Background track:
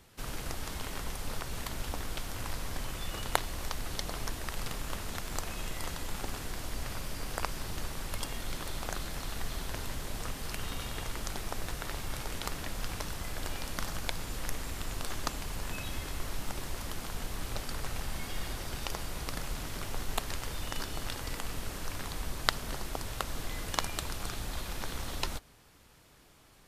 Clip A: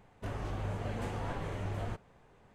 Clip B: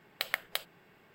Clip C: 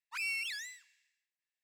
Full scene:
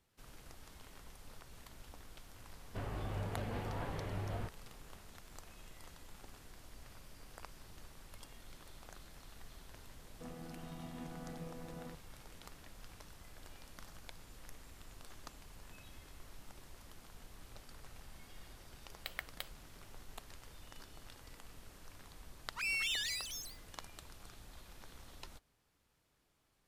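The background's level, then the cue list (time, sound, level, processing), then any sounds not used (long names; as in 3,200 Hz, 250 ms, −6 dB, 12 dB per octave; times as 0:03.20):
background track −17.5 dB
0:02.52: mix in A −3.5 dB + downsampling to 11,025 Hz
0:09.97: mix in A −9 dB + channel vocoder with a chord as carrier bare fifth, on E3
0:18.85: mix in B −11 dB
0:22.44: mix in C −0.5 dB + delay with pitch and tempo change per echo 267 ms, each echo +5 semitones, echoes 3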